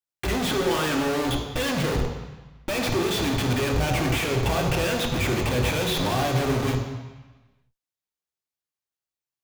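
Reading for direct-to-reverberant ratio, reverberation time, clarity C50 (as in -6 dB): 2.0 dB, 1.2 s, 5.5 dB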